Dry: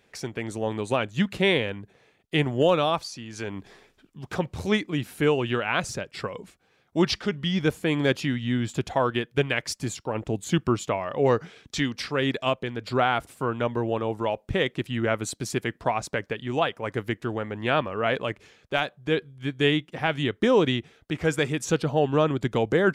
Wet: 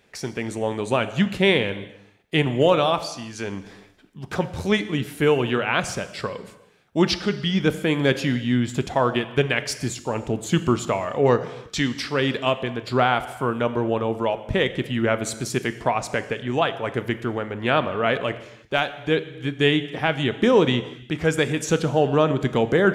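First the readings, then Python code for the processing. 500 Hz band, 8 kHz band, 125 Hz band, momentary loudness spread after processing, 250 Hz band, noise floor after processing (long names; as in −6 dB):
+3.5 dB, +3.5 dB, +3.0 dB, 10 LU, +3.5 dB, −51 dBFS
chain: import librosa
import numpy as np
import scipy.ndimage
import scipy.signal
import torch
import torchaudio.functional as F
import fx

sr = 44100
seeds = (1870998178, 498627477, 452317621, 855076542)

y = fx.rev_gated(x, sr, seeds[0], gate_ms=380, shape='falling', drr_db=11.0)
y = y * 10.0 ** (3.0 / 20.0)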